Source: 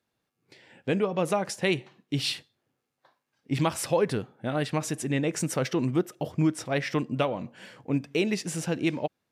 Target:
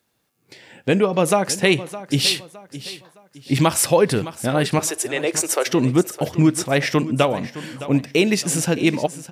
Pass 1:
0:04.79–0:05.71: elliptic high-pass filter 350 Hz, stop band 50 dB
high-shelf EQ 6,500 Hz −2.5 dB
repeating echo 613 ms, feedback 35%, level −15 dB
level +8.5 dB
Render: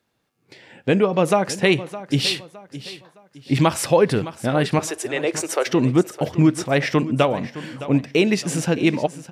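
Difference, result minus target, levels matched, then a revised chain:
8,000 Hz band −6.0 dB
0:04.79–0:05.71: elliptic high-pass filter 350 Hz, stop band 50 dB
high-shelf EQ 6,500 Hz +9 dB
repeating echo 613 ms, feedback 35%, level −15 dB
level +8.5 dB

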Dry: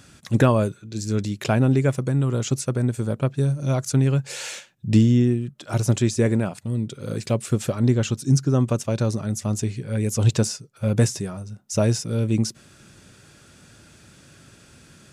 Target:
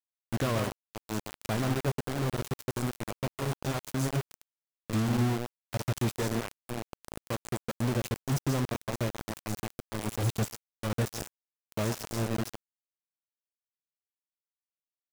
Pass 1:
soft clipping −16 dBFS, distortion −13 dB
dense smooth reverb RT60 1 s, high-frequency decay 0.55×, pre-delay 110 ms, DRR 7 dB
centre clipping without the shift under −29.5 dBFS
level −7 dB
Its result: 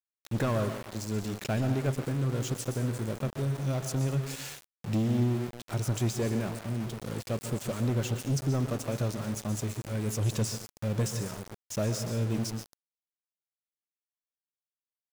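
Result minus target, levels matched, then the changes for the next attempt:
centre clipping without the shift: distortion −12 dB
change: centre clipping without the shift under −20 dBFS

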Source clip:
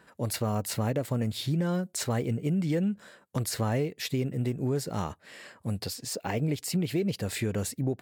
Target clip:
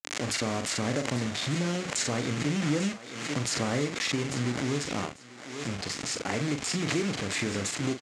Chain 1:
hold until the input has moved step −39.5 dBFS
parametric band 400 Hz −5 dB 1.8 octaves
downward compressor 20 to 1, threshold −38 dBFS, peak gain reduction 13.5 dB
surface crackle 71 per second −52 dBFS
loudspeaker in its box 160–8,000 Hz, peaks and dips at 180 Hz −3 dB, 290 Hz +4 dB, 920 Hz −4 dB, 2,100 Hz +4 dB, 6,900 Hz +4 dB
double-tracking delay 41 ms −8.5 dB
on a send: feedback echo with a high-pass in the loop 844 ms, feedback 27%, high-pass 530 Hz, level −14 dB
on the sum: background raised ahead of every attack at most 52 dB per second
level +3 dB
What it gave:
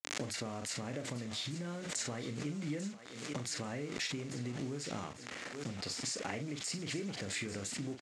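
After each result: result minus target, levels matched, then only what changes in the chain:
downward compressor: peak gain reduction +13.5 dB; hold until the input has moved: distortion −10 dB
remove: downward compressor 20 to 1, threshold −38 dBFS, peak gain reduction 13.5 dB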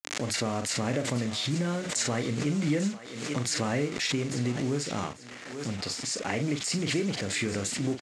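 hold until the input has moved: distortion −10 dB
change: hold until the input has moved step −30.5 dBFS

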